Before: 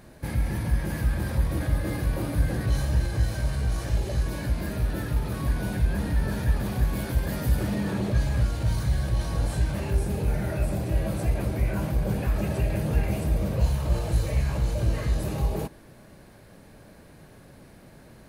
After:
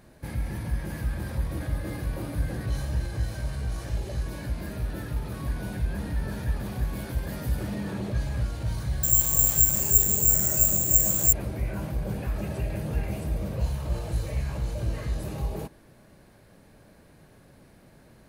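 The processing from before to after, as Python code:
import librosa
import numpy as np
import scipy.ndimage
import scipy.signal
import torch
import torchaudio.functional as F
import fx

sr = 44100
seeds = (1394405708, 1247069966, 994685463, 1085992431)

y = fx.resample_bad(x, sr, factor=6, down='none', up='zero_stuff', at=(9.03, 11.33))
y = y * 10.0 ** (-4.5 / 20.0)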